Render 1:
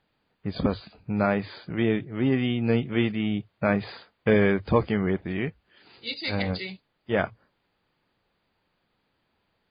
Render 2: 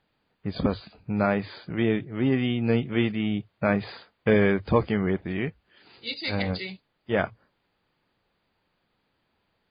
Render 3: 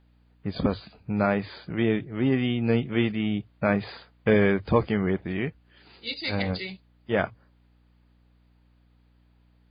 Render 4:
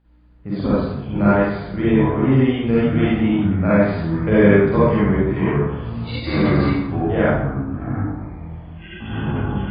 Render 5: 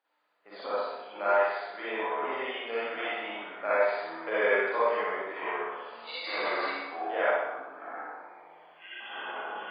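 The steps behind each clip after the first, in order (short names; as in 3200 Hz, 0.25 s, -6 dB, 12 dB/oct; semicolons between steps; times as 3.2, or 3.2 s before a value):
nothing audible
hum 60 Hz, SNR 33 dB
high shelf 3100 Hz -11 dB; reverb RT60 0.90 s, pre-delay 38 ms, DRR -9.5 dB; echoes that change speed 0.23 s, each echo -6 st, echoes 3, each echo -6 dB; gain -2 dB
HPF 560 Hz 24 dB/oct; flutter echo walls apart 10.5 m, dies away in 0.7 s; gain -5.5 dB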